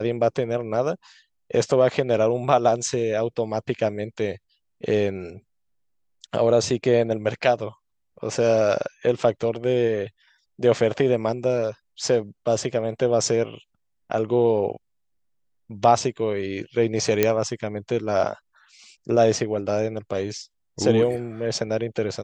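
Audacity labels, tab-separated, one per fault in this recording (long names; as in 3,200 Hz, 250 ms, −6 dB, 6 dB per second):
17.230000	17.230000	click −4 dBFS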